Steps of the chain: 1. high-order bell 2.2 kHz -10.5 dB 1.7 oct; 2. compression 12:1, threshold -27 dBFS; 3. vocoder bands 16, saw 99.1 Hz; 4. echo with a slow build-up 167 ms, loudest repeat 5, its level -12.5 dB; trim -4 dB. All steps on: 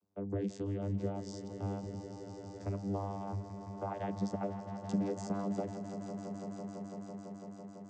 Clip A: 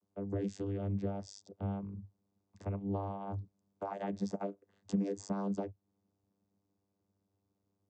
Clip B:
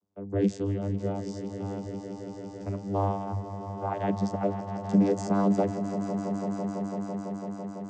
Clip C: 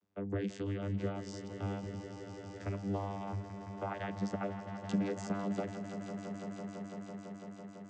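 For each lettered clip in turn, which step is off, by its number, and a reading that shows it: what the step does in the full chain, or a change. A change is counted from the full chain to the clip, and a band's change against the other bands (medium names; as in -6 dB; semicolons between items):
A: 4, echo-to-direct -3.0 dB to none; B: 2, mean gain reduction 6.0 dB; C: 1, 2 kHz band +8.5 dB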